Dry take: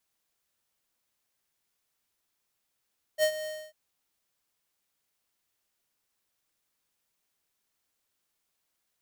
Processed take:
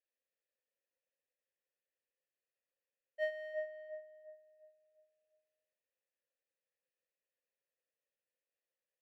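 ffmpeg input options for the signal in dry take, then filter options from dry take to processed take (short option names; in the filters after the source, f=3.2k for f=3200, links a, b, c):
-f lavfi -i "aevalsrc='0.0794*(2*lt(mod(619*t,1),0.5)-1)':d=0.545:s=44100,afade=t=in:d=0.052,afade=t=out:st=0.052:d=0.078:silence=0.211,afade=t=out:st=0.28:d=0.265"
-filter_complex "[0:a]asplit=3[a][b][c];[a]bandpass=f=530:t=q:w=8,volume=0dB[d];[b]bandpass=f=1.84k:t=q:w=8,volume=-6dB[e];[c]bandpass=f=2.48k:t=q:w=8,volume=-9dB[f];[d][e][f]amix=inputs=3:normalize=0,equalizer=f=7k:w=0.78:g=-10,asplit=2[g][h];[h]adelay=352,lowpass=f=1k:p=1,volume=-3dB,asplit=2[i][j];[j]adelay=352,lowpass=f=1k:p=1,volume=0.46,asplit=2[k][l];[l]adelay=352,lowpass=f=1k:p=1,volume=0.46,asplit=2[m][n];[n]adelay=352,lowpass=f=1k:p=1,volume=0.46,asplit=2[o][p];[p]adelay=352,lowpass=f=1k:p=1,volume=0.46,asplit=2[q][r];[r]adelay=352,lowpass=f=1k:p=1,volume=0.46[s];[i][k][m][o][q][s]amix=inputs=6:normalize=0[t];[g][t]amix=inputs=2:normalize=0"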